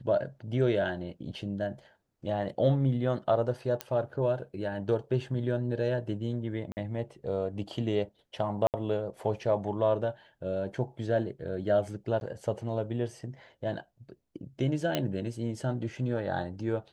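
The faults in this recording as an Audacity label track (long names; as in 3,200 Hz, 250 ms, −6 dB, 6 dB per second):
3.810000	3.810000	click −16 dBFS
6.720000	6.770000	drop-out 49 ms
8.670000	8.740000	drop-out 68 ms
12.200000	12.210000	drop-out 11 ms
14.950000	14.950000	click −13 dBFS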